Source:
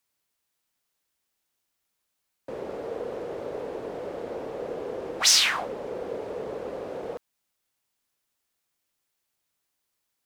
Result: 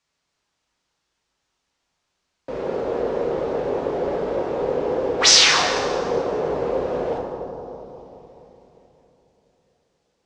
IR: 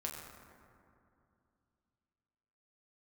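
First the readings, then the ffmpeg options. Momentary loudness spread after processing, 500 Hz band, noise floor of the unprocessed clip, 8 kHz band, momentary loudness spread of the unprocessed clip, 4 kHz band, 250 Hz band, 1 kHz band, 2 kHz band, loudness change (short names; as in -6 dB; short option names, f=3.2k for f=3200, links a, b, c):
19 LU, +10.5 dB, -80 dBFS, +5.5 dB, 18 LU, +7.5 dB, +10.5 dB, +11.0 dB, +8.0 dB, +7.5 dB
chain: -filter_complex "[0:a]lowpass=f=6.7k:w=0.5412,lowpass=f=6.7k:w=1.3066[a];[1:a]atrim=start_sample=2205,asetrate=30429,aresample=44100[b];[a][b]afir=irnorm=-1:irlink=0,volume=7dB"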